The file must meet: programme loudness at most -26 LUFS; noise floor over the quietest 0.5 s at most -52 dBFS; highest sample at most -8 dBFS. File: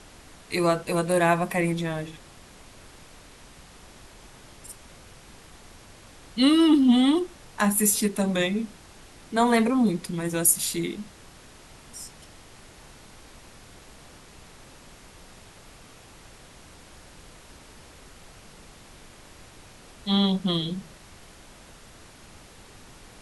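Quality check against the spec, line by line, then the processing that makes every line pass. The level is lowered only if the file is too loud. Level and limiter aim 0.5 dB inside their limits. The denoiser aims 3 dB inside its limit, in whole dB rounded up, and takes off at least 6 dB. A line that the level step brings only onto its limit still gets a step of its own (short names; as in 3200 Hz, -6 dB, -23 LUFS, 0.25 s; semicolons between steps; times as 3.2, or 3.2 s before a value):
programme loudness -23.5 LUFS: fail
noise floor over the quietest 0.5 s -49 dBFS: fail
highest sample -5.5 dBFS: fail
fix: denoiser 6 dB, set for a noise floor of -49 dBFS; gain -3 dB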